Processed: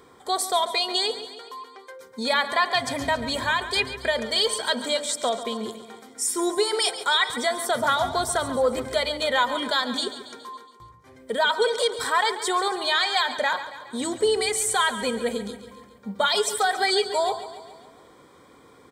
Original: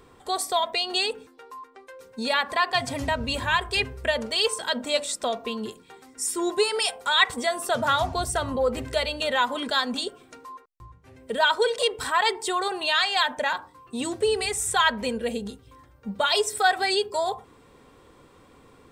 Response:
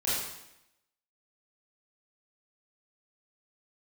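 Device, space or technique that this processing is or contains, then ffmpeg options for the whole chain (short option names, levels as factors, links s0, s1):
PA system with an anti-feedback notch: -af "highpass=f=200:p=1,asuperstop=centerf=2700:order=12:qfactor=7.6,alimiter=limit=0.188:level=0:latency=1:release=145,aecho=1:1:139|278|417|556|695|834:0.224|0.128|0.0727|0.0415|0.0236|0.0135,volume=1.33"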